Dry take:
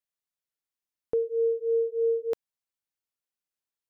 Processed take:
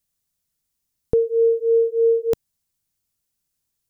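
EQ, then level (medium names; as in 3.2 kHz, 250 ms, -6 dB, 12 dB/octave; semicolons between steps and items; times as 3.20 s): tone controls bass +10 dB, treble +10 dB; bass shelf 260 Hz +7.5 dB; +5.5 dB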